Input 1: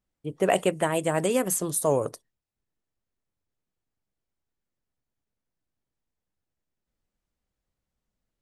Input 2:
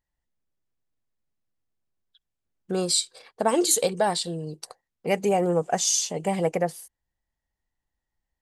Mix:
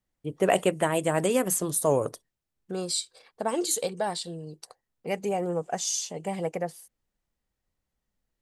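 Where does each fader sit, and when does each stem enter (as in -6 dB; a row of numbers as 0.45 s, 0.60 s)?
0.0 dB, -6.0 dB; 0.00 s, 0.00 s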